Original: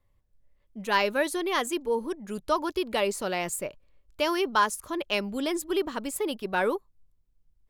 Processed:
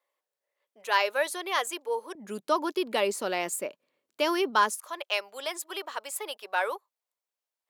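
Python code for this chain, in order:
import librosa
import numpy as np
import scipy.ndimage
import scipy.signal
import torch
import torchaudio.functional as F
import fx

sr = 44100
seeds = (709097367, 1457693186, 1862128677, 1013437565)

y = fx.highpass(x, sr, hz=fx.steps((0.0, 480.0), (2.15, 220.0), (4.8, 570.0)), slope=24)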